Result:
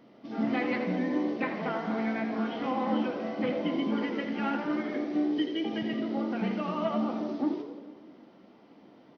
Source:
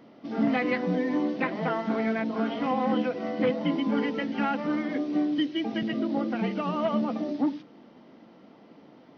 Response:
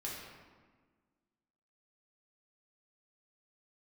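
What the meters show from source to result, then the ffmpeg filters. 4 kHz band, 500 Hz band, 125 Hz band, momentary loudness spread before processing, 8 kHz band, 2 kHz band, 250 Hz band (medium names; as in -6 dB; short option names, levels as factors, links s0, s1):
-2.5 dB, -3.5 dB, -3.5 dB, 3 LU, no reading, -3.0 dB, -2.5 dB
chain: -filter_complex "[0:a]bandreject=f=56.37:t=h:w=4,bandreject=f=112.74:t=h:w=4,bandreject=f=169.11:t=h:w=4,bandreject=f=225.48:t=h:w=4,bandreject=f=281.85:t=h:w=4,bandreject=f=338.22:t=h:w=4,bandreject=f=394.59:t=h:w=4,bandreject=f=450.96:t=h:w=4,bandreject=f=507.33:t=h:w=4,bandreject=f=563.7:t=h:w=4,bandreject=f=620.07:t=h:w=4,bandreject=f=676.44:t=h:w=4,bandreject=f=732.81:t=h:w=4,bandreject=f=789.18:t=h:w=4,bandreject=f=845.55:t=h:w=4,bandreject=f=901.92:t=h:w=4,bandreject=f=958.29:t=h:w=4,bandreject=f=1014.66:t=h:w=4,bandreject=f=1071.03:t=h:w=4,bandreject=f=1127.4:t=h:w=4,bandreject=f=1183.77:t=h:w=4,bandreject=f=1240.14:t=h:w=4,bandreject=f=1296.51:t=h:w=4,bandreject=f=1352.88:t=h:w=4,bandreject=f=1409.25:t=h:w=4,bandreject=f=1465.62:t=h:w=4,bandreject=f=1521.99:t=h:w=4,bandreject=f=1578.36:t=h:w=4,bandreject=f=1634.73:t=h:w=4,bandreject=f=1691.1:t=h:w=4,bandreject=f=1747.47:t=h:w=4,bandreject=f=1803.84:t=h:w=4,bandreject=f=1860.21:t=h:w=4,bandreject=f=1916.58:t=h:w=4,bandreject=f=1972.95:t=h:w=4,bandreject=f=2029.32:t=h:w=4,bandreject=f=2085.69:t=h:w=4,bandreject=f=2142.06:t=h:w=4,bandreject=f=2198.43:t=h:w=4,asplit=6[s0][s1][s2][s3][s4][s5];[s1]adelay=82,afreqshift=63,volume=0.316[s6];[s2]adelay=164,afreqshift=126,volume=0.155[s7];[s3]adelay=246,afreqshift=189,volume=0.0759[s8];[s4]adelay=328,afreqshift=252,volume=0.0372[s9];[s5]adelay=410,afreqshift=315,volume=0.0182[s10];[s0][s6][s7][s8][s9][s10]amix=inputs=6:normalize=0,asplit=2[s11][s12];[1:a]atrim=start_sample=2205[s13];[s12][s13]afir=irnorm=-1:irlink=0,volume=0.473[s14];[s11][s14]amix=inputs=2:normalize=0,volume=0.531"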